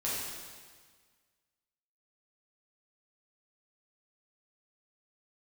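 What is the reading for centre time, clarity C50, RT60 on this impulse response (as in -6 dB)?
108 ms, -2.0 dB, 1.6 s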